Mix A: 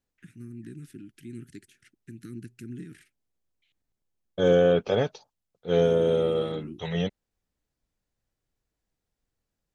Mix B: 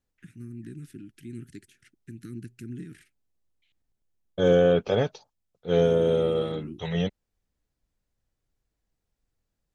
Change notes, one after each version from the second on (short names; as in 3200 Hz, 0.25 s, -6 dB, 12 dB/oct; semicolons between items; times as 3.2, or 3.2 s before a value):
master: add low shelf 100 Hz +5.5 dB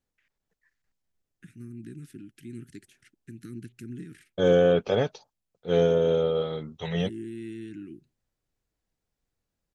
first voice: entry +1.20 s; master: add low shelf 100 Hz -5.5 dB